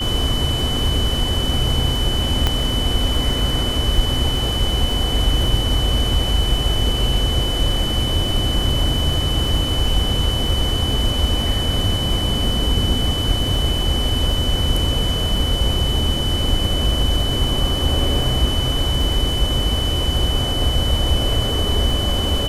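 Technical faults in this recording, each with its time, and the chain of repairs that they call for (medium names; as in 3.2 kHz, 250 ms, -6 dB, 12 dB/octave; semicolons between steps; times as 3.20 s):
crackle 27 per s -25 dBFS
whine 3 kHz -23 dBFS
2.47 s: pop -4 dBFS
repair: de-click; band-stop 3 kHz, Q 30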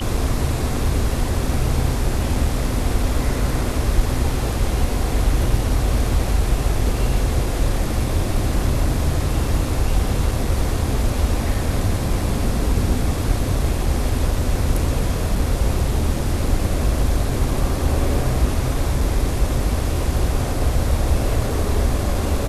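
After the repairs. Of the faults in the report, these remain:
nothing left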